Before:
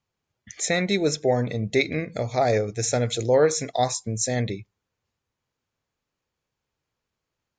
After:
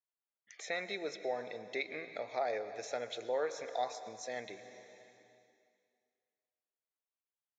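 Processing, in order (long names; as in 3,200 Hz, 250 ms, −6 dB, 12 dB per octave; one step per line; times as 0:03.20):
noise gate −44 dBFS, range −20 dB
on a send at −12.5 dB: convolution reverb RT60 2.1 s, pre-delay 103 ms
on the sum: downward compressor 1.5 to 1, threshold −49 dBFS, peak gain reduction 12.5 dB
high-pass filter 590 Hz 12 dB per octave
high-frequency loss of the air 200 metres
level +1 dB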